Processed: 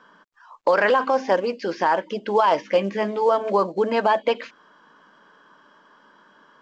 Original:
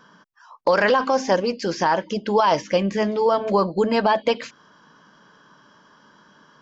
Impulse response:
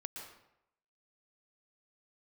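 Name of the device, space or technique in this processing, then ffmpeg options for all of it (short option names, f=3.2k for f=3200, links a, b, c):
telephone: -filter_complex "[0:a]asettb=1/sr,asplit=3[a][b][c];[a]atrim=end=2.624[d];[b]atrim=start=2.62:end=3.32,asetpts=PTS-STARTPTS,afade=t=in:d=0.004:c=qsin,afade=t=out:st=0.696:d=0.004:c=qsin,asplit=2[e][f];[f]adelay=15,volume=-10dB[g];[e][g]amix=inputs=2:normalize=0,atrim=end_sample=30870[h];[c]atrim=start=3.316[i];[d][h]acrossfade=d=0.004:c1=hsin:c2=qsin[j];[j][i]acrossfade=d=0.004:c1=qsin:c2=hsin,highpass=280,lowpass=3.2k" -ar 16000 -c:a pcm_mulaw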